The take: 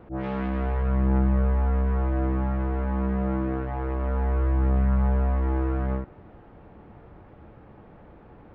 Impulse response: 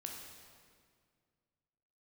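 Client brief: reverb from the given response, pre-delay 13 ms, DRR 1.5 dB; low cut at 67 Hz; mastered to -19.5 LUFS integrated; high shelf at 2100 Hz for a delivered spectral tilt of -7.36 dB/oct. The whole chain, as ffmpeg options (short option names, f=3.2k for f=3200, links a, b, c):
-filter_complex "[0:a]highpass=67,highshelf=f=2.1k:g=-3,asplit=2[a][b];[1:a]atrim=start_sample=2205,adelay=13[c];[b][c]afir=irnorm=-1:irlink=0,volume=1dB[d];[a][d]amix=inputs=2:normalize=0,volume=6dB"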